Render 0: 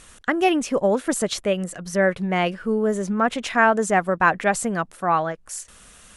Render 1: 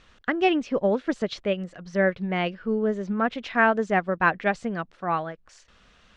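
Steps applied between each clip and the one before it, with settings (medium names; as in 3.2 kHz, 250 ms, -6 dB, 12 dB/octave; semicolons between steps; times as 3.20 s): low-pass 4.7 kHz 24 dB/octave; dynamic bell 950 Hz, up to -4 dB, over -32 dBFS, Q 0.91; upward expansion 1.5:1, over -29 dBFS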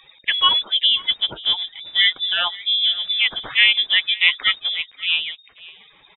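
coarse spectral quantiser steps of 30 dB; frequency inversion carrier 3.7 kHz; delay 534 ms -21.5 dB; trim +5.5 dB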